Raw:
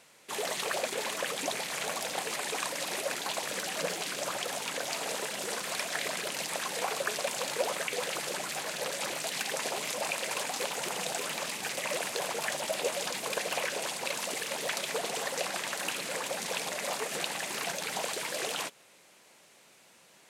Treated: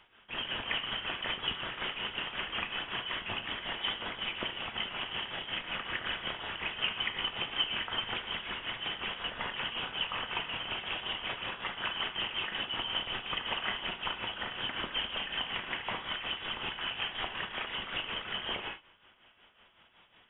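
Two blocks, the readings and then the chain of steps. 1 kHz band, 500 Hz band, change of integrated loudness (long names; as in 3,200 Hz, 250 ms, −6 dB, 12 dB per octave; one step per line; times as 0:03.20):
−3.0 dB, −11.0 dB, −1.5 dB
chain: voice inversion scrambler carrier 3,600 Hz
reverb whose tail is shaped and stops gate 140 ms flat, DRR 2.5 dB
amplitude tremolo 5.4 Hz, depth 63%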